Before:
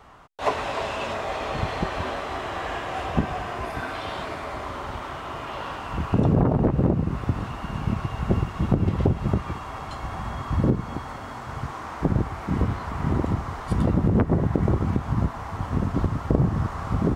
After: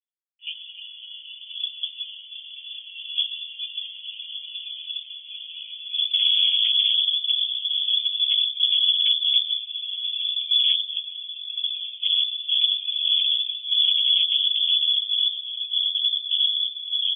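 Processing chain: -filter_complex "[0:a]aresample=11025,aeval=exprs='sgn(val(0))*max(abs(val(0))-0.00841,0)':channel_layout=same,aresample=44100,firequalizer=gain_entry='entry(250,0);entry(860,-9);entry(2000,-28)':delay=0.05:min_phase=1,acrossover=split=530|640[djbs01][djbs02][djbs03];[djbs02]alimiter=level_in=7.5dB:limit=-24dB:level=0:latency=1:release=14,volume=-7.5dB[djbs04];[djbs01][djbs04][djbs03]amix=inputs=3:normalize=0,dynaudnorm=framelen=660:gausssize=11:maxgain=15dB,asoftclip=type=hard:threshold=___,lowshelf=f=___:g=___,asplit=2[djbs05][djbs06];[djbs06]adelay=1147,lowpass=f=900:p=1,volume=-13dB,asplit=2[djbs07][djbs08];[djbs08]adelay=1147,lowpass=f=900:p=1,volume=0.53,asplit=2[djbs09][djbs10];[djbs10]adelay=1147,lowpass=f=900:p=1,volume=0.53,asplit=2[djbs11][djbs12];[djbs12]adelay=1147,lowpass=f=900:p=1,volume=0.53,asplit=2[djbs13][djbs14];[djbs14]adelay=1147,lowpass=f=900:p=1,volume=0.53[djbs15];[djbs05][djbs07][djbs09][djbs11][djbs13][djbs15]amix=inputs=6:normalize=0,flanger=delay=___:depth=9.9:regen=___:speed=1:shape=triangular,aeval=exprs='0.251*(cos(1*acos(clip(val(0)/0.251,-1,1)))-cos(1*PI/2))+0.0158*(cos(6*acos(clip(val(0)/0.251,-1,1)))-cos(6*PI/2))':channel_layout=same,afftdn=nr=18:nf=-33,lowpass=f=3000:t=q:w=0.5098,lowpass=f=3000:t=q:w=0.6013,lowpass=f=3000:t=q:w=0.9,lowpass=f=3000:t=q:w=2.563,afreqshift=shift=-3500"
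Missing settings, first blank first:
-17dB, 210, 4.5, 8.3, -26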